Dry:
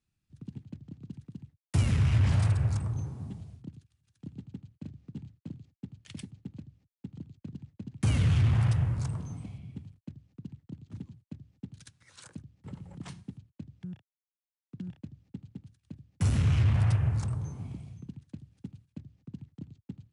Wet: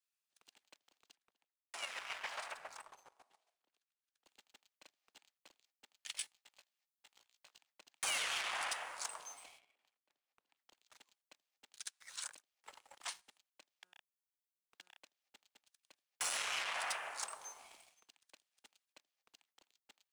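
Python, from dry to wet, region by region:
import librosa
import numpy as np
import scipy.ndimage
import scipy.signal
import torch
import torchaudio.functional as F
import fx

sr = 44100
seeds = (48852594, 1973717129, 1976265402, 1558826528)

y = fx.chain(x, sr, fx.lowpass(hz=2600.0, slope=6),
    fx.chopper(hz=7.3, depth_pct=60, duty_pct=20), at=(1.14, 4.26))
y = fx.chain(y, sr, fx.bessel_highpass(hz=740.0, order=2),
    fx.doubler(ms=17.0, db=-4), at=(6.13, 7.59))
y = fx.chain(y, sr, fx.lowpass(hz=2200.0, slope=6),
    fx.over_compress(threshold_db=-43.0, ratio=-0.5), at=(9.59, 10.57))
y = scipy.signal.sosfilt(scipy.signal.butter(4, 640.0, 'highpass', fs=sr, output='sos'), y)
y = fx.tilt_eq(y, sr, slope=2.0)
y = fx.leveller(y, sr, passes=2)
y = y * librosa.db_to_amplitude(-4.5)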